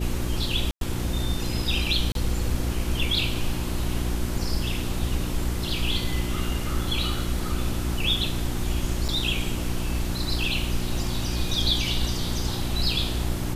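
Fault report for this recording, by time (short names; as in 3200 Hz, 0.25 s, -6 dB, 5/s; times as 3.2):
hum 60 Hz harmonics 6 -30 dBFS
0.71–0.81 gap 0.102 s
2.12–2.15 gap 32 ms
9.08–9.09 gap 6.4 ms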